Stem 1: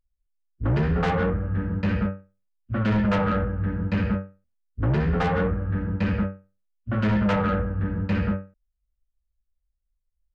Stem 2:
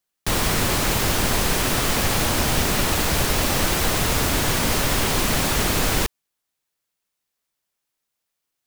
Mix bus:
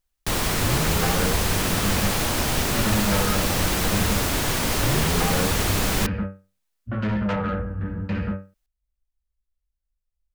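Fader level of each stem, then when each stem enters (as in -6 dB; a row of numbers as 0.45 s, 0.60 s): -2.5 dB, -2.5 dB; 0.00 s, 0.00 s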